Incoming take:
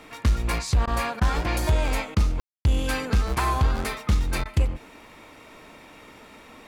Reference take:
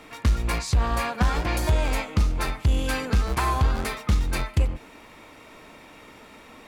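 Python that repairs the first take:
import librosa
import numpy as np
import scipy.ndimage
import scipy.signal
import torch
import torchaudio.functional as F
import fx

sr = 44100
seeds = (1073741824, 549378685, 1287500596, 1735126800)

y = fx.fix_ambience(x, sr, seeds[0], print_start_s=5.0, print_end_s=5.5, start_s=2.4, end_s=2.65)
y = fx.fix_interpolate(y, sr, at_s=(0.86, 1.2, 2.15, 4.44), length_ms=13.0)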